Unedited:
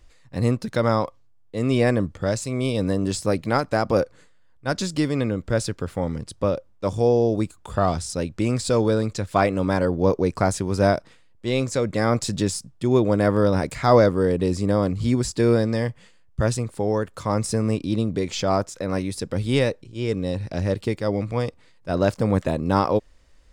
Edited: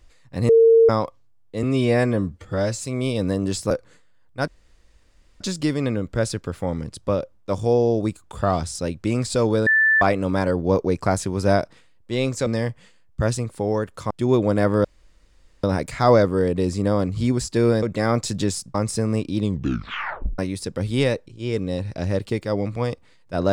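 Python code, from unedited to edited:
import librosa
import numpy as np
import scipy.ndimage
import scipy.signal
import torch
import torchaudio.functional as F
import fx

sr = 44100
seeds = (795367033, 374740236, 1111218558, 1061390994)

y = fx.edit(x, sr, fx.bleep(start_s=0.49, length_s=0.4, hz=455.0, db=-9.5),
    fx.stretch_span(start_s=1.63, length_s=0.81, factor=1.5),
    fx.cut(start_s=3.3, length_s=0.68),
    fx.insert_room_tone(at_s=4.75, length_s=0.93),
    fx.bleep(start_s=9.01, length_s=0.35, hz=1760.0, db=-13.5),
    fx.swap(start_s=11.81, length_s=0.92, other_s=15.66, other_length_s=1.64),
    fx.insert_room_tone(at_s=13.47, length_s=0.79),
    fx.tape_stop(start_s=17.94, length_s=1.0), tone=tone)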